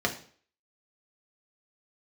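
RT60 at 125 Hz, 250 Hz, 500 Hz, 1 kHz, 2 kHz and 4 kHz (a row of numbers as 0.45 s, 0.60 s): 0.50 s, 0.50 s, 0.50 s, 0.45 s, 0.45 s, 0.45 s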